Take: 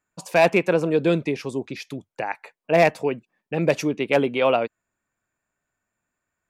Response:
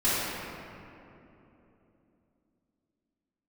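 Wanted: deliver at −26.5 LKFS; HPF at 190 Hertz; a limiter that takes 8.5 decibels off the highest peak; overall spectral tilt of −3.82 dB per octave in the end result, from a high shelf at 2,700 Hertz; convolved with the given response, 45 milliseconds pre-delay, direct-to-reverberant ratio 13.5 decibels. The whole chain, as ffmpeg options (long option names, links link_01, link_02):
-filter_complex "[0:a]highpass=190,highshelf=frequency=2700:gain=3.5,alimiter=limit=-12dB:level=0:latency=1,asplit=2[link_01][link_02];[1:a]atrim=start_sample=2205,adelay=45[link_03];[link_02][link_03]afir=irnorm=-1:irlink=0,volume=-27.5dB[link_04];[link_01][link_04]amix=inputs=2:normalize=0,volume=-1.5dB"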